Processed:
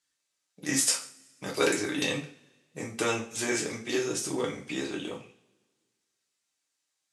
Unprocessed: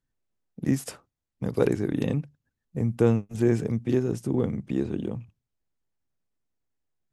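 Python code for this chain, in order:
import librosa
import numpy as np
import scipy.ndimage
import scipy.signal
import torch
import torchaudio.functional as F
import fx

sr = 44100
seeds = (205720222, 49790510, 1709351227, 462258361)

y = fx.weighting(x, sr, curve='ITU-R 468')
y = y + 10.0 ** (-23.0 / 20.0) * np.pad(y, (int(139 * sr / 1000.0), 0))[:len(y)]
y = fx.rev_double_slope(y, sr, seeds[0], early_s=0.31, late_s=1.6, knee_db=-26, drr_db=-2.5)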